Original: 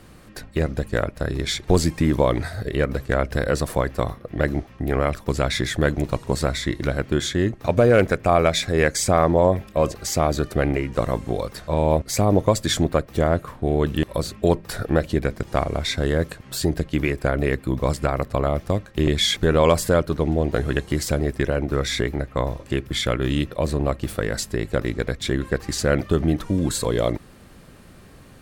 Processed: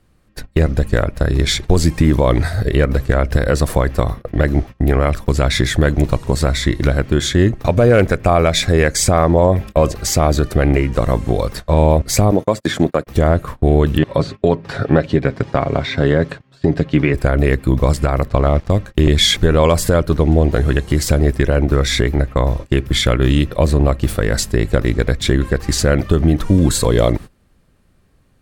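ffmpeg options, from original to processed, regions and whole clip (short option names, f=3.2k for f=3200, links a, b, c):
-filter_complex "[0:a]asettb=1/sr,asplit=3[a][b][c];[a]atrim=end=12.314[d];[b]atrim=start=12.31:end=13.07,asetpts=PTS-STARTPTS,afade=t=in:d=0.004:c=qsin,afade=t=out:st=0.756:d=0.004:c=qsin,agate=range=-33dB:threshold=-28dB:ratio=16:release=100:detection=peak,highpass=180,acrossover=split=2500[e][f];[f]acompressor=threshold=-37dB:ratio=4:attack=1:release=60[g];[e][g]amix=inputs=2:normalize=0[h];[c]atrim=start=13.066[i];[d][h]acrossfade=d=0.004:c1=hsin:c2=qsin[j];[j][i]acrossfade=d=0.004:c1=qsin:c2=hsin,asettb=1/sr,asplit=3[k][l][m];[k]atrim=end=13.984[n];[l]atrim=start=13.98:end=17.14,asetpts=PTS-STARTPTS,afade=t=in:d=0.004:c=qsin,afade=t=out:st=3.156:d=0.004:c=qsin,acrossover=split=2800[o][p];[p]acompressor=threshold=-36dB:ratio=4:attack=1:release=60[q];[o][q]amix=inputs=2:normalize=0,highpass=110,lowpass=4.5k,aecho=1:1:7.3:0.37,atrim=end_sample=139356[r];[m]atrim=start=17.136[s];[n][r]acrossfade=d=0.004:c1=hsin:c2=qsin[t];[t][s]acrossfade=d=0.004:c1=qsin:c2=hsin,asettb=1/sr,asplit=3[u][v][w];[u]atrim=end=18.294[x];[v]atrim=start=18.29:end=18.7,asetpts=PTS-STARTPTS,afade=t=in:d=0.004:c=qsin,afade=t=out:st=0.406:d=0.004:c=qsin,lowpass=5.3k,aeval=exprs='sgn(val(0))*max(abs(val(0))-0.00531,0)':c=same[y];[w]atrim=start=18.696[z];[x][y]acrossfade=d=0.004:c1=hsin:c2=qsin[aa];[aa][z]acrossfade=d=0.004:c1=qsin:c2=hsin,agate=range=-21dB:threshold=-35dB:ratio=16:detection=peak,lowshelf=f=83:g=10,alimiter=limit=-9dB:level=0:latency=1:release=175,volume=7.5dB"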